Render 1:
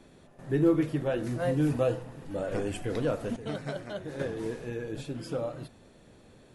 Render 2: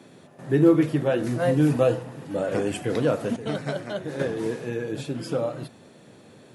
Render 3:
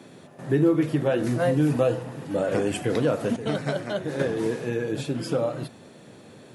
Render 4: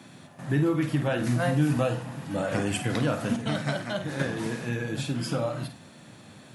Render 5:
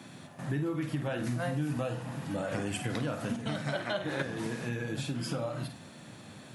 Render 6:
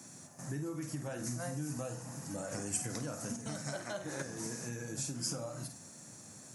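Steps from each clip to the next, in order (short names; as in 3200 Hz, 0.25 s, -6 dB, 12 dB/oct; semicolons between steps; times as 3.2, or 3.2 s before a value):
HPF 110 Hz 24 dB/oct; gain +6.5 dB
compressor 2:1, threshold -23 dBFS, peak gain reduction 6.5 dB; gain +2.5 dB
bell 430 Hz -12.5 dB 0.87 oct; on a send: flutter echo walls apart 8.6 m, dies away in 0.3 s; on the sum: gain +1.5 dB
spectral gain 3.73–4.22, 280–4300 Hz +7 dB; compressor 2.5:1, threshold -33 dBFS, peak gain reduction 10 dB
resonant high shelf 4600 Hz +11 dB, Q 3; gain -7 dB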